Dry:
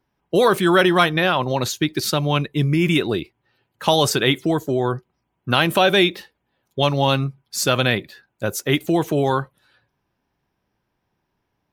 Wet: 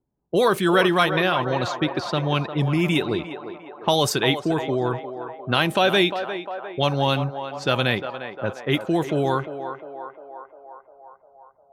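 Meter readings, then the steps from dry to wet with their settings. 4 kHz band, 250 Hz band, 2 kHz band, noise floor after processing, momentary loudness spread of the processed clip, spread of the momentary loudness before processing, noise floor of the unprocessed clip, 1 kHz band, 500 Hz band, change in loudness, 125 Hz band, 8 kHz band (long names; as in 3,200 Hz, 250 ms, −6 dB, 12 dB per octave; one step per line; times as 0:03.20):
−3.0 dB, −3.0 dB, −2.5 dB, −57 dBFS, 15 LU, 10 LU, −75 dBFS, −2.0 dB, −2.5 dB, −3.0 dB, −3.0 dB, −7.5 dB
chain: low-pass that shuts in the quiet parts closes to 560 Hz, open at −14 dBFS
feedback echo with a band-pass in the loop 352 ms, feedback 71%, band-pass 810 Hz, level −7.5 dB
level −3 dB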